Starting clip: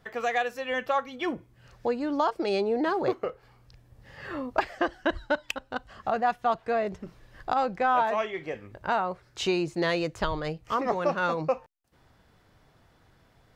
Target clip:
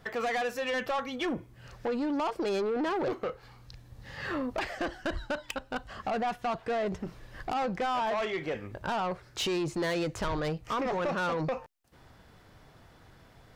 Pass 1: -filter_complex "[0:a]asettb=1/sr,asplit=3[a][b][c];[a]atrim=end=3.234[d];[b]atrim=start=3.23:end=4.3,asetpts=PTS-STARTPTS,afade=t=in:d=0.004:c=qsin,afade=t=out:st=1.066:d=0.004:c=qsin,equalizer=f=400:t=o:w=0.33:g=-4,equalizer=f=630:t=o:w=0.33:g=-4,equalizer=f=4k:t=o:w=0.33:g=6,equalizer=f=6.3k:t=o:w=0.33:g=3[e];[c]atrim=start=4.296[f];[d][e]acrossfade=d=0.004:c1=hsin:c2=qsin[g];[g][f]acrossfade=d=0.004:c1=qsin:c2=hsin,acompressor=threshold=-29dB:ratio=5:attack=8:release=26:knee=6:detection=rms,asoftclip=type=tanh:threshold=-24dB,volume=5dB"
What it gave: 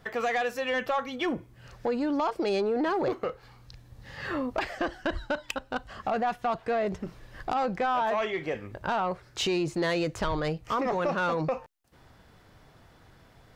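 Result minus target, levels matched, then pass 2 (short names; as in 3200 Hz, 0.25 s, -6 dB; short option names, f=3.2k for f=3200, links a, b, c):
soft clip: distortion -8 dB
-filter_complex "[0:a]asettb=1/sr,asplit=3[a][b][c];[a]atrim=end=3.234[d];[b]atrim=start=3.23:end=4.3,asetpts=PTS-STARTPTS,afade=t=in:d=0.004:c=qsin,afade=t=out:st=1.066:d=0.004:c=qsin,equalizer=f=400:t=o:w=0.33:g=-4,equalizer=f=630:t=o:w=0.33:g=-4,equalizer=f=4k:t=o:w=0.33:g=6,equalizer=f=6.3k:t=o:w=0.33:g=3[e];[c]atrim=start=4.296[f];[d][e]acrossfade=d=0.004:c1=hsin:c2=qsin[g];[g][f]acrossfade=d=0.004:c1=qsin:c2=hsin,acompressor=threshold=-29dB:ratio=5:attack=8:release=26:knee=6:detection=rms,asoftclip=type=tanh:threshold=-31dB,volume=5dB"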